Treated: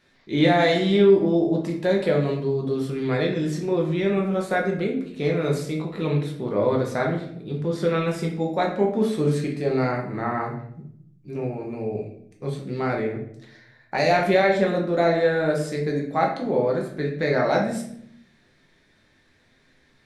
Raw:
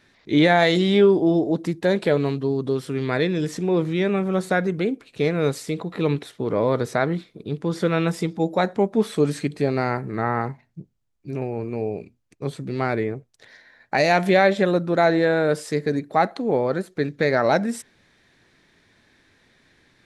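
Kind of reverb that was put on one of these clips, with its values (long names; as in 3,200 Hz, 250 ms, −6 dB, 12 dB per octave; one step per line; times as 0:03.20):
rectangular room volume 130 cubic metres, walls mixed, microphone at 0.95 metres
level −5.5 dB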